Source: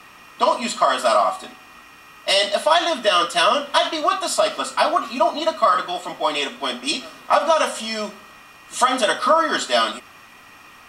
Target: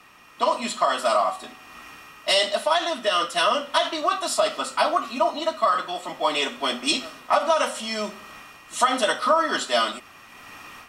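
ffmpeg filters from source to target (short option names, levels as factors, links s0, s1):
-af "dynaudnorm=f=270:g=3:m=3.16,volume=0.473"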